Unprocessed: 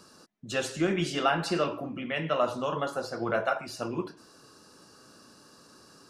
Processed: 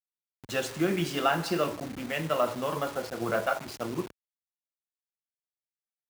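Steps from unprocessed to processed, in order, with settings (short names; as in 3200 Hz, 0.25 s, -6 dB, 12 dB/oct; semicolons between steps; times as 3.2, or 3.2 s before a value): level-crossing sampler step -36.5 dBFS; HPF 53 Hz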